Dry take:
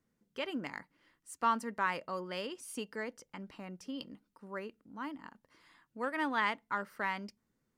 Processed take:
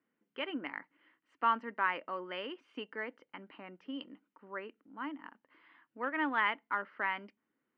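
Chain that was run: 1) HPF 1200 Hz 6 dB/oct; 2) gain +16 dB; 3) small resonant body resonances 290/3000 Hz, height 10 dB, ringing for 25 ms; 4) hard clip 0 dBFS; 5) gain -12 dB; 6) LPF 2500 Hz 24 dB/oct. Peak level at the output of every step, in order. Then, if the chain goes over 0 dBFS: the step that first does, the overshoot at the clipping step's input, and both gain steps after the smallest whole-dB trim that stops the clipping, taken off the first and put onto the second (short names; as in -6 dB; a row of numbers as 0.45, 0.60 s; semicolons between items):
-20.0, -4.0, -3.0, -3.0, -15.0, -17.0 dBFS; no overload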